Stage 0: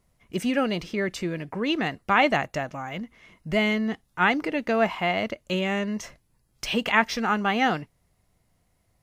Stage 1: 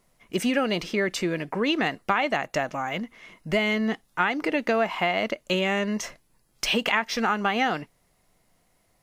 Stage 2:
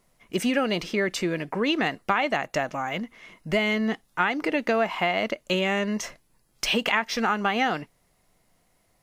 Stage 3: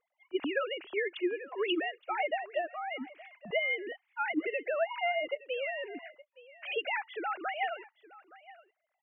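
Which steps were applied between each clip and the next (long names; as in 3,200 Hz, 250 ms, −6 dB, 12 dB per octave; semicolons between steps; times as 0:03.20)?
parametric band 72 Hz −13.5 dB 2 octaves; downward compressor 10 to 1, threshold −25 dBFS, peak gain reduction 12 dB; level +5.5 dB
no processing that can be heard
three sine waves on the formant tracks; single-tap delay 869 ms −20 dB; level −8.5 dB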